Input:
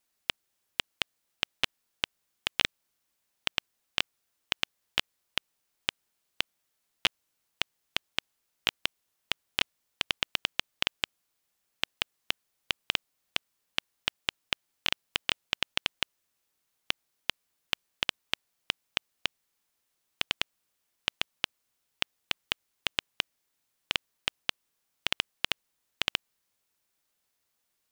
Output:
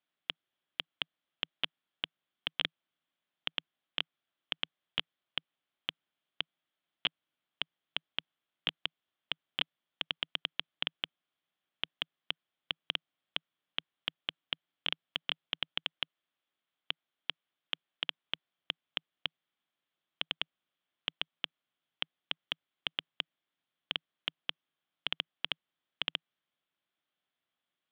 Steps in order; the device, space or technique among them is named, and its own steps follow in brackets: overdrive pedal into a guitar cabinet (overdrive pedal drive 8 dB, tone 1.1 kHz, clips at -4.5 dBFS; cabinet simulation 100–3900 Hz, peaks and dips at 160 Hz +6 dB, 290 Hz +3 dB, 460 Hz -6 dB, 910 Hz -5 dB, 3.3 kHz +10 dB); 15.84–18.21 s: bass shelf 160 Hz -7 dB; trim -3.5 dB

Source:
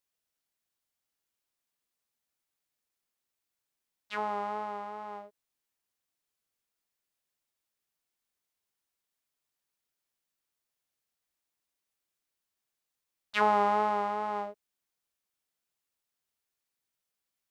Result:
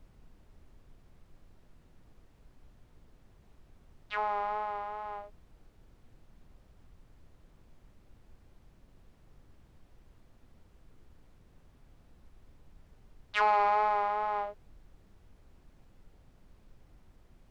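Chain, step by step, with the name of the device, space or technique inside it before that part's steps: aircraft cabin announcement (band-pass 490–3500 Hz; saturation -20 dBFS, distortion -17 dB; brown noise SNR 17 dB); trim +2.5 dB

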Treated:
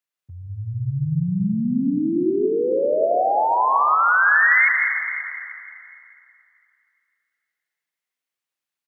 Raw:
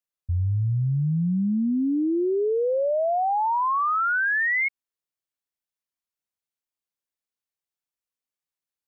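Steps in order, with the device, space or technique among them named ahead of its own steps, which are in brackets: PA in a hall (high-pass 130 Hz 24 dB/octave; peaking EQ 2 kHz +6 dB 2.1 oct; delay 168 ms -8.5 dB; reverberation RT60 2.6 s, pre-delay 108 ms, DRR 3.5 dB)

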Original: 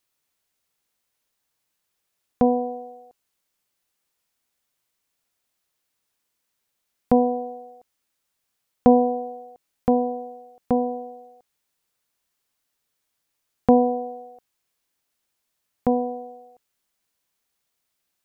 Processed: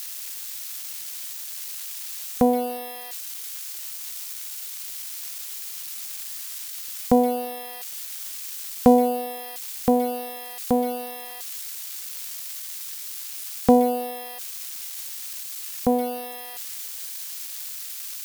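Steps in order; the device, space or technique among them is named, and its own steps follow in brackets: budget class-D amplifier (dead-time distortion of 0.077 ms; zero-crossing glitches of -20 dBFS)

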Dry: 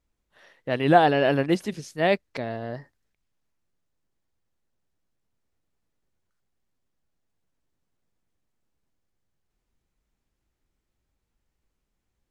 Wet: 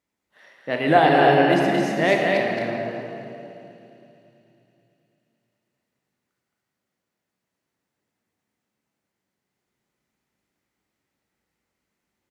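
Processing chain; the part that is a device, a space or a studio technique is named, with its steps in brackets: stadium PA (high-pass 170 Hz 12 dB/octave; peaking EQ 2 kHz +6.5 dB 0.26 oct; loudspeakers at several distances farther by 75 m -5 dB, 86 m -9 dB; reverberation RT60 2.9 s, pre-delay 23 ms, DRR 0.5 dB); 2.08–2.70 s: treble shelf 7.7 kHz +6 dB; thinning echo 109 ms, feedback 85%, high-pass 450 Hz, level -21.5 dB

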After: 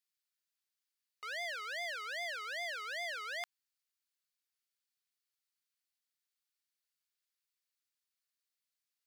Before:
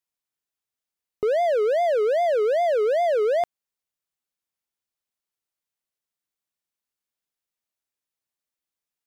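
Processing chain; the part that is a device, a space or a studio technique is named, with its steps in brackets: headphones lying on a table (high-pass 1.3 kHz 24 dB/octave; peaking EQ 4.5 kHz +5 dB 0.4 oct); trim -2 dB

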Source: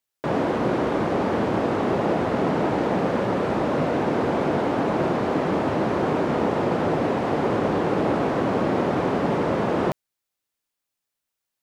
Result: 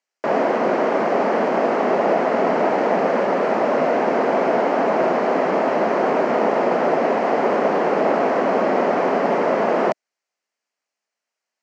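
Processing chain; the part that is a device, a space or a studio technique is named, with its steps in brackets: television speaker (cabinet simulation 230–6700 Hz, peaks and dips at 310 Hz -7 dB, 660 Hz +5 dB, 2 kHz +3 dB, 3.6 kHz -10 dB); trim +4.5 dB

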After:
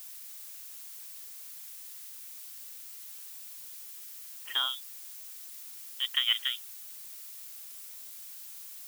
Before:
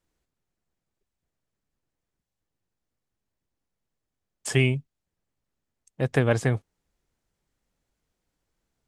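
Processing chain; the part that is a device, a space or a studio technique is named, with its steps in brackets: scrambled radio voice (band-pass 350–3000 Hz; frequency inversion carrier 3.6 kHz; white noise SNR 13 dB); tilt EQ +4 dB/octave; trim -9 dB

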